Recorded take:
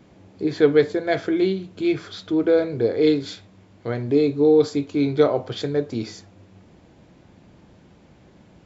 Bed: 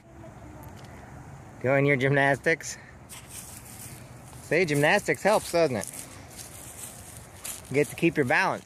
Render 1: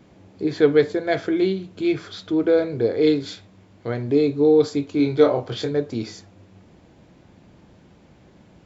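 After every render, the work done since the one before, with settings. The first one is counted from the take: 4.97–5.71 s: doubling 24 ms -5 dB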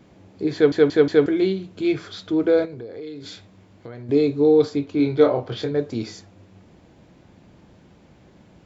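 0.54 s: stutter in place 0.18 s, 4 plays; 2.65–4.09 s: compression, threshold -33 dBFS; 4.65–5.79 s: distance through air 91 m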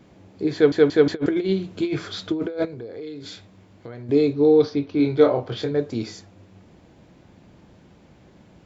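1.06–2.65 s: compressor with a negative ratio -22 dBFS, ratio -0.5; 4.33–5.05 s: steep low-pass 6.2 kHz 96 dB/octave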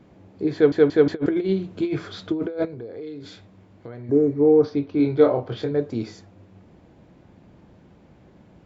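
4.06–4.61 s: spectral replace 1.7–5.2 kHz before; treble shelf 2.7 kHz -9 dB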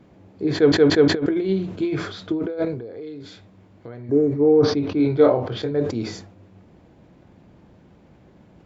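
decay stretcher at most 77 dB/s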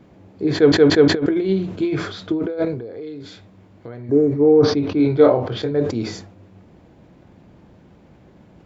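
trim +2.5 dB

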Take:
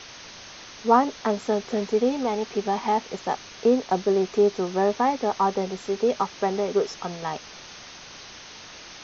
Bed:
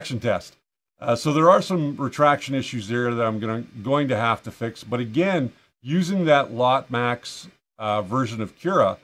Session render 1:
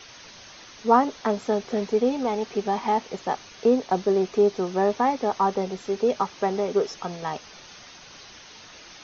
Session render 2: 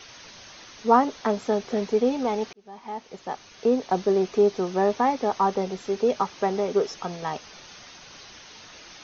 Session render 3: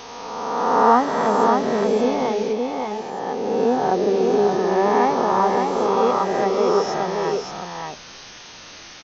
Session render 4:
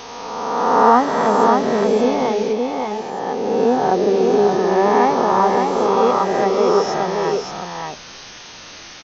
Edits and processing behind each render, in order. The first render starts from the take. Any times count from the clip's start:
noise reduction 6 dB, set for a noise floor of -44 dBFS
2.53–4.00 s: fade in
reverse spectral sustain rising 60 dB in 1.89 s; delay 575 ms -4 dB
trim +3 dB; peak limiter -1 dBFS, peak gain reduction 1 dB

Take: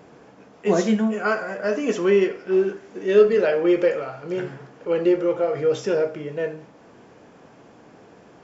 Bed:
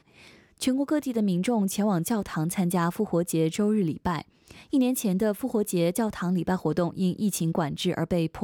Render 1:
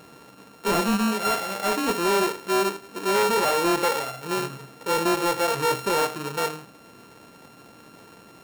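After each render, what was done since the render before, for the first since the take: sorted samples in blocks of 32 samples; hard clipper -19 dBFS, distortion -8 dB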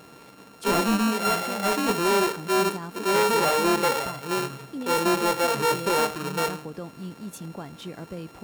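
add bed -11.5 dB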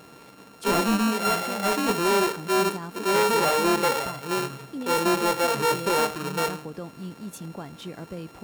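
no audible change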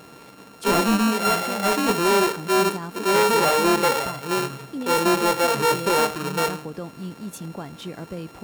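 trim +3 dB

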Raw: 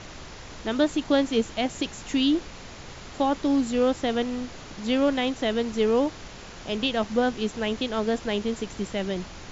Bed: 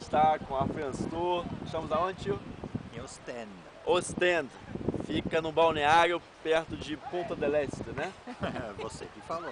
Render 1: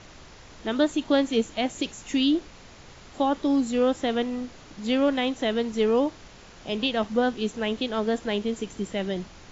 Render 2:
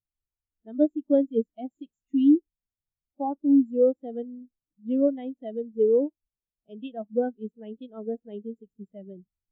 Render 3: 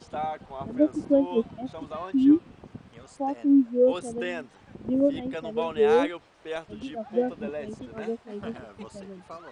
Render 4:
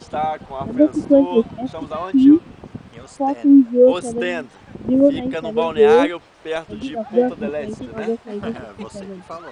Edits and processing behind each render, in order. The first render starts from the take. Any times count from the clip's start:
noise print and reduce 6 dB
spectral contrast expander 2.5:1
add bed -6.5 dB
trim +9 dB; peak limiter -3 dBFS, peak gain reduction 2.5 dB

